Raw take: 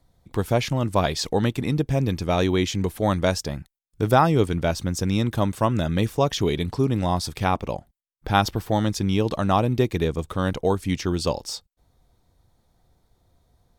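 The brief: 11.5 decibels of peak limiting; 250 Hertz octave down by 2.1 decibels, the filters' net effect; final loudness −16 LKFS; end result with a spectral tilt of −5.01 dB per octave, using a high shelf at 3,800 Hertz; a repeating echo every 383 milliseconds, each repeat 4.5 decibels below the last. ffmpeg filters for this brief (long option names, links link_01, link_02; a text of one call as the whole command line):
ffmpeg -i in.wav -af "equalizer=frequency=250:width_type=o:gain=-3,highshelf=frequency=3800:gain=4.5,alimiter=limit=-14dB:level=0:latency=1,aecho=1:1:383|766|1149|1532|1915|2298|2681|3064|3447:0.596|0.357|0.214|0.129|0.0772|0.0463|0.0278|0.0167|0.01,volume=8.5dB" out.wav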